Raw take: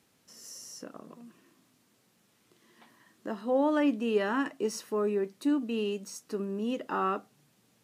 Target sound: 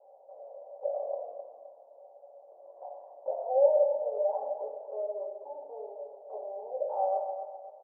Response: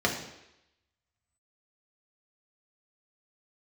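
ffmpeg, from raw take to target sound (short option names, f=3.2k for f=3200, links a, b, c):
-filter_complex "[0:a]acompressor=threshold=-44dB:ratio=5,aeval=exprs='0.0299*sin(PI/2*2.51*val(0)/0.0299)':c=same,asuperpass=centerf=650:order=8:qfactor=2.3,aecho=1:1:259|518|777|1036:0.355|0.121|0.041|0.0139[a];[1:a]atrim=start_sample=2205,afade=t=out:st=0.22:d=0.01,atrim=end_sample=10143,asetrate=35280,aresample=44100[b];[a][b]afir=irnorm=-1:irlink=0"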